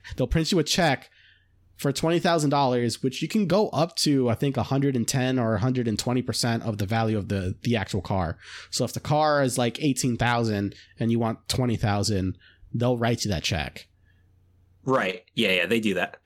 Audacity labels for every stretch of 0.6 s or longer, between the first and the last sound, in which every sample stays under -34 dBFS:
1.020000	1.800000	silence
13.810000	14.860000	silence